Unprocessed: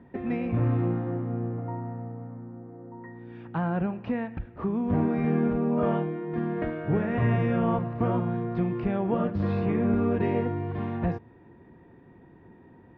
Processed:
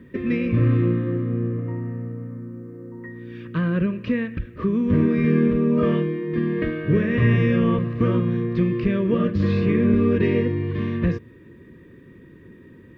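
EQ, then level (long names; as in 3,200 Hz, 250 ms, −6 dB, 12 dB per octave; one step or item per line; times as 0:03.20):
Butterworth band-reject 790 Hz, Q 1.3
high-shelf EQ 3,100 Hz +9.5 dB
notch filter 1,400 Hz, Q 8.8
+6.5 dB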